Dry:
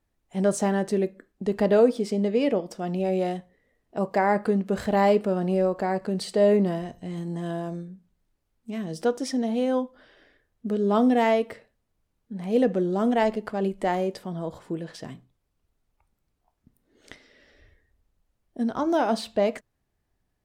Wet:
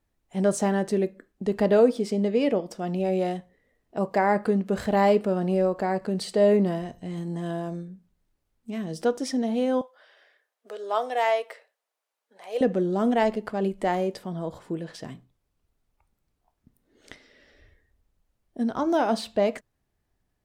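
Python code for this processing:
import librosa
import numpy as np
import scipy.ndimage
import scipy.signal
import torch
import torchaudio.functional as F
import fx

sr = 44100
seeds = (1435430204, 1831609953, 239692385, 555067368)

y = fx.highpass(x, sr, hz=540.0, slope=24, at=(9.81, 12.61))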